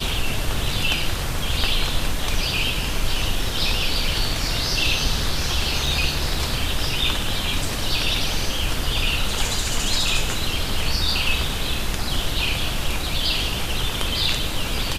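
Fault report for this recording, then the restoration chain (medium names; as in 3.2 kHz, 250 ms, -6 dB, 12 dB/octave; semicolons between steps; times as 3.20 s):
5.86 s: dropout 3.1 ms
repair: interpolate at 5.86 s, 3.1 ms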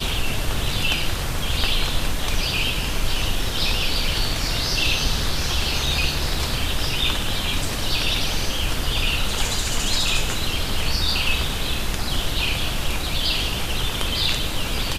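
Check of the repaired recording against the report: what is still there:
nothing left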